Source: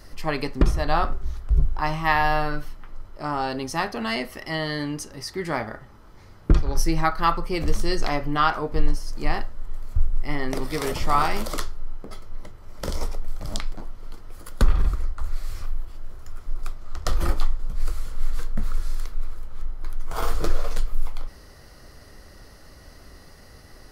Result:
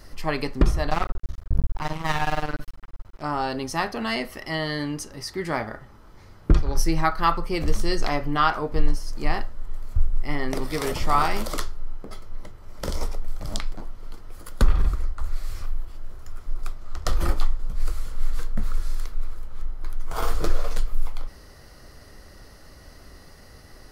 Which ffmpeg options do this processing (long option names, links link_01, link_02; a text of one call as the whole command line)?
ffmpeg -i in.wav -filter_complex "[0:a]asplit=3[link_01][link_02][link_03];[link_01]afade=type=out:start_time=0.89:duration=0.02[link_04];[link_02]aeval=exprs='max(val(0),0)':channel_layout=same,afade=type=in:start_time=0.89:duration=0.02,afade=type=out:start_time=3.21:duration=0.02[link_05];[link_03]afade=type=in:start_time=3.21:duration=0.02[link_06];[link_04][link_05][link_06]amix=inputs=3:normalize=0" out.wav